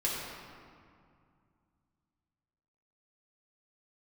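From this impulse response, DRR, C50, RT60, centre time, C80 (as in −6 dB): −6.5 dB, −0.5 dB, 2.3 s, 114 ms, 1.0 dB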